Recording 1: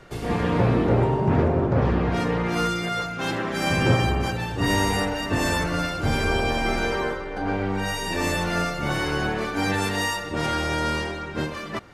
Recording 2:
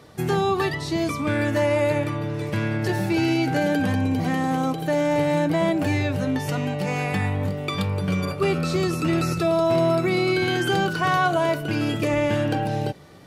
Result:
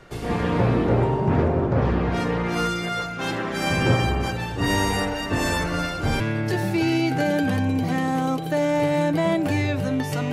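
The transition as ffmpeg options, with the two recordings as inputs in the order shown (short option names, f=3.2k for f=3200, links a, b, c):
-filter_complex "[0:a]apad=whole_dur=10.32,atrim=end=10.32,atrim=end=6.202[a];[1:a]atrim=start=2.558:end=6.68[b];[a][b]acrossfade=d=0.004:c1=hsin:c2=hsin"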